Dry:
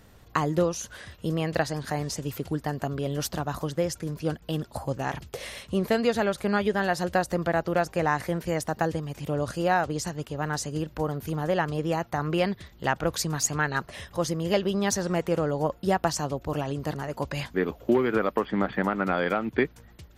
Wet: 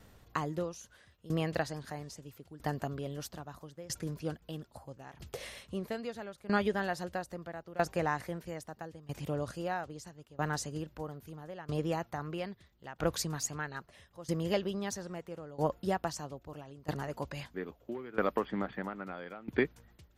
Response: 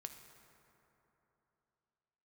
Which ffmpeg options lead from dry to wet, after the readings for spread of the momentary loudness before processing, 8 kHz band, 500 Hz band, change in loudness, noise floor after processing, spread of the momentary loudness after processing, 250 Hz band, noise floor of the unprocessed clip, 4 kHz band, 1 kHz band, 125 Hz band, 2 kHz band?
7 LU, -9.5 dB, -9.5 dB, -9.0 dB, -66 dBFS, 14 LU, -9.5 dB, -53 dBFS, -9.0 dB, -9.5 dB, -9.0 dB, -9.5 dB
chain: -af "aeval=exprs='val(0)*pow(10,-19*if(lt(mod(0.77*n/s,1),2*abs(0.77)/1000),1-mod(0.77*n/s,1)/(2*abs(0.77)/1000),(mod(0.77*n/s,1)-2*abs(0.77)/1000)/(1-2*abs(0.77)/1000))/20)':c=same,volume=-3dB"

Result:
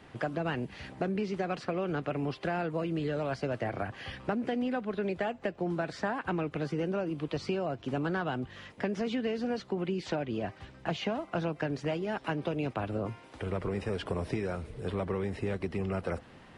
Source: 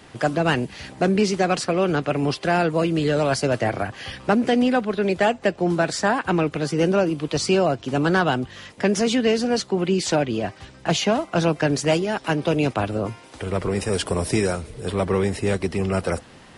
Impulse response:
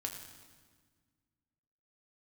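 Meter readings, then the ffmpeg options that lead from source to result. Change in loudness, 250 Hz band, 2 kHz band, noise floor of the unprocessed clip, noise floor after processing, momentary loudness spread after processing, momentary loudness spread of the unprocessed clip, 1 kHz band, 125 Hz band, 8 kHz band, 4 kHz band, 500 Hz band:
-12.0 dB, -11.0 dB, -12.0 dB, -47 dBFS, -54 dBFS, 5 LU, 7 LU, -12.0 dB, -10.5 dB, -24.5 dB, -15.5 dB, -12.0 dB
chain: -filter_complex "[0:a]acrossover=split=5200[a][b];[b]acompressor=threshold=-43dB:ratio=4:attack=1:release=60[c];[a][c]amix=inputs=2:normalize=0,bass=f=250:g=1,treble=f=4k:g=-10,acompressor=threshold=-22dB:ratio=6,volume=-6.5dB"

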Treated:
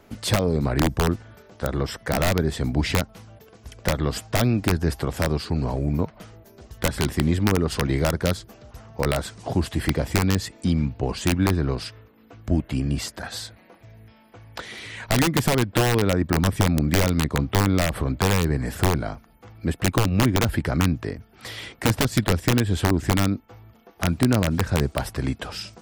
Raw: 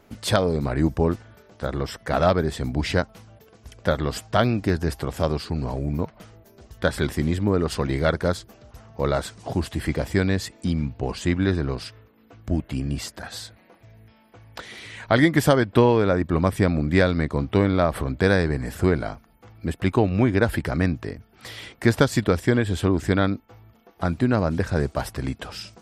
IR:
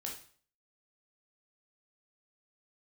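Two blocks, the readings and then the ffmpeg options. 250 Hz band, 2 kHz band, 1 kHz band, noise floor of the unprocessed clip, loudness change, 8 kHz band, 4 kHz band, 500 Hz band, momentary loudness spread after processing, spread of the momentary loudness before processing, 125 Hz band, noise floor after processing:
-0.5 dB, -0.5 dB, -0.5 dB, -56 dBFS, 0.0 dB, +7.0 dB, +3.5 dB, -3.5 dB, 11 LU, 14 LU, +1.5 dB, -53 dBFS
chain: -filter_complex "[0:a]aeval=exprs='(mod(3.35*val(0)+1,2)-1)/3.35':c=same,acrossover=split=300[a][b];[b]acompressor=threshold=-28dB:ratio=2[c];[a][c]amix=inputs=2:normalize=0,volume=2.5dB"

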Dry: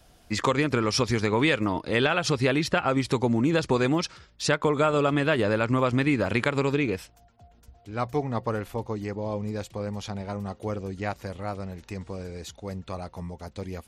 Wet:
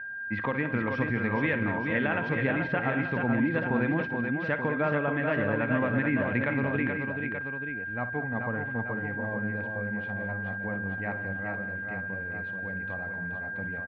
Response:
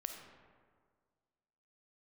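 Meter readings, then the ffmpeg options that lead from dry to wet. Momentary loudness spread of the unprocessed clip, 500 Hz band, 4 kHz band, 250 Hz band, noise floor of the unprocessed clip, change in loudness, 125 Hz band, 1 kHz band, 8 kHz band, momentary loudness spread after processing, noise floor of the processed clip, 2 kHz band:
14 LU, -5.5 dB, -17.5 dB, -2.5 dB, -58 dBFS, -3.5 dB, -3.0 dB, -5.0 dB, under -35 dB, 7 LU, -36 dBFS, +3.5 dB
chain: -af "aeval=exprs='val(0)+0.0282*sin(2*PI*1600*n/s)':c=same,highpass=100,equalizer=f=100:t=q:w=4:g=4,equalizer=f=230:t=q:w=4:g=4,equalizer=f=390:t=q:w=4:g=-8,equalizer=f=1.2k:t=q:w=4:g=-5,equalizer=f=1.9k:t=q:w=4:g=4,lowpass=f=2.3k:w=0.5412,lowpass=f=2.3k:w=1.3066,aecho=1:1:58|160|205|431|883:0.237|0.106|0.168|0.562|0.376,volume=-5dB"

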